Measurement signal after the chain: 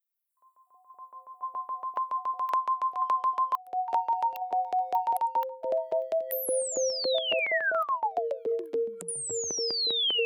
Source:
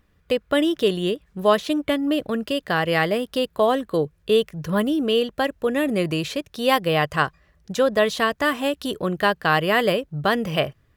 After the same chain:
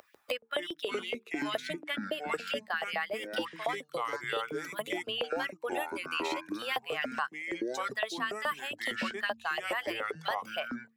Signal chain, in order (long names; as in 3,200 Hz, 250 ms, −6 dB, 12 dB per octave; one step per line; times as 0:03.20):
spectral dynamics exaggerated over time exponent 1.5
hum removal 75.31 Hz, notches 6
dynamic equaliser 160 Hz, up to +3 dB, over −34 dBFS, Q 0.81
reversed playback
downward compressor 6 to 1, threshold −30 dBFS
reversed playback
auto-filter high-pass saw up 7.1 Hz 590–3,000 Hz
delay with pitch and tempo change per echo 145 ms, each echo −6 semitones, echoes 2
multiband upward and downward compressor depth 100%
level −1.5 dB